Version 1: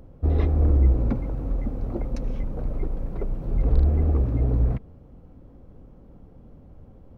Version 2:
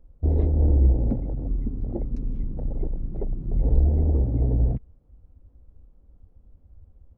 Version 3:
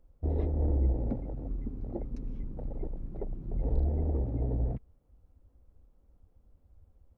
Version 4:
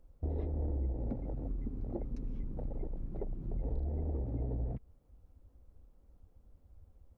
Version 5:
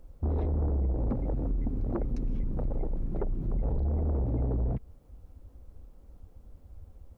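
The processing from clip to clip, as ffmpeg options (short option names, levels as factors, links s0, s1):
-af "afwtdn=0.0398"
-af "lowshelf=f=410:g=-8.5,volume=0.891"
-af "acompressor=threshold=0.0178:ratio=3,volume=1.12"
-af "aeval=exprs='0.0631*sin(PI/2*2*val(0)/0.0631)':c=same"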